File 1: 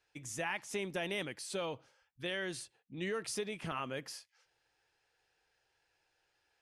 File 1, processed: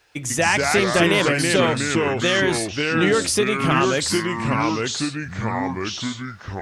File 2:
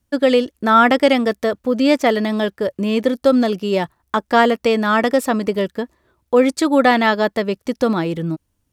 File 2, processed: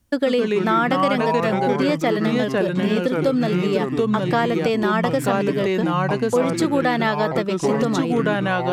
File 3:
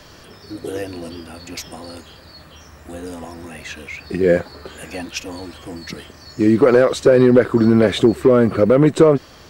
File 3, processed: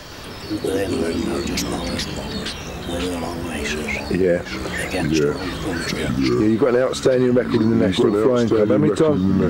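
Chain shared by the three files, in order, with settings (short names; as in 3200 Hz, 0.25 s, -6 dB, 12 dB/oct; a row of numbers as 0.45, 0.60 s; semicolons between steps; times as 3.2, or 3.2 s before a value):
echoes that change speed 0.117 s, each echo -3 st, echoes 3; compressor 3:1, threshold -24 dBFS; match loudness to -20 LUFS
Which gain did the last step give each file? +18.0, +4.5, +7.0 dB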